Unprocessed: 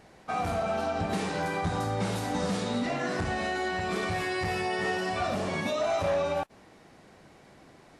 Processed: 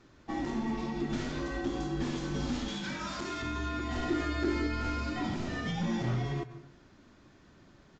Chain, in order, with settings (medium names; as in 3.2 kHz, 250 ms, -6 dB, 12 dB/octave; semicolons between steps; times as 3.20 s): frequency shift -440 Hz; 2.68–3.42 s: tilt EQ +2.5 dB/octave; reverberation RT60 0.60 s, pre-delay 113 ms, DRR 13 dB; resampled via 16 kHz; 0.92–1.74 s: band-stop 1.1 kHz, Q 13; 3.95–4.67 s: peaking EQ 380 Hz +9.5 dB 0.75 oct; trim -4 dB